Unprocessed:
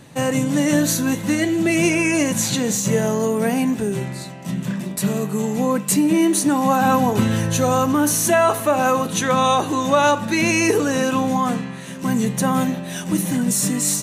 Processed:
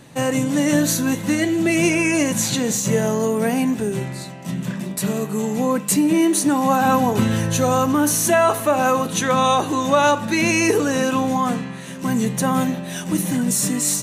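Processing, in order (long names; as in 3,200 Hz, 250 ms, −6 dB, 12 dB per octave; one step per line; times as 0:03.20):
mains-hum notches 50/100/150/200 Hz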